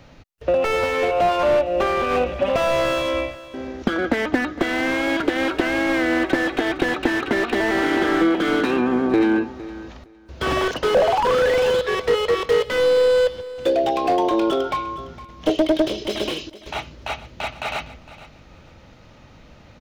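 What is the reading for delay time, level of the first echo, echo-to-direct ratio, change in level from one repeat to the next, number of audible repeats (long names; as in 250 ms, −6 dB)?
460 ms, −17.0 dB, −17.0 dB, −15.5 dB, 2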